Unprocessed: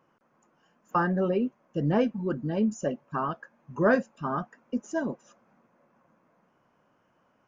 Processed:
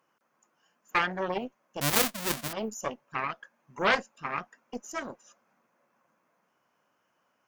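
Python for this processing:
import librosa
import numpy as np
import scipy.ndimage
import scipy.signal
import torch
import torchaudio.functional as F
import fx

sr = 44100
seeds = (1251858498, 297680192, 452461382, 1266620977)

y = fx.halfwave_hold(x, sr, at=(1.81, 2.53))
y = fx.cheby_harmonics(y, sr, harmonics=(4,), levels_db=(-6,), full_scale_db=-11.0)
y = fx.tilt_eq(y, sr, slope=3.0)
y = y * 10.0 ** (-4.5 / 20.0)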